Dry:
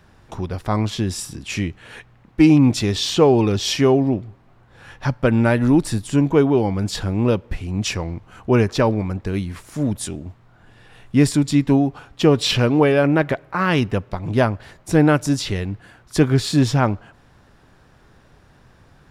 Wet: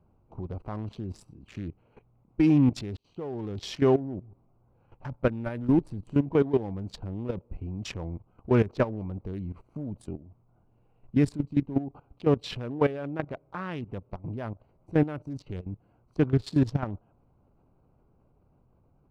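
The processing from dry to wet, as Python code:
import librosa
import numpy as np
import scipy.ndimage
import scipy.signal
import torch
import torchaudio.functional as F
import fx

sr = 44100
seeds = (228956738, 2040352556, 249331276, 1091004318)

y = fx.tremolo(x, sr, hz=5.6, depth=0.54, at=(11.34, 16.19), fade=0.02)
y = fx.edit(y, sr, fx.fade_in_span(start_s=2.97, length_s=0.54), tone=tone)
y = fx.wiener(y, sr, points=25)
y = fx.level_steps(y, sr, step_db=15)
y = fx.high_shelf(y, sr, hz=4400.0, db=-9.5)
y = y * 10.0 ** (-4.0 / 20.0)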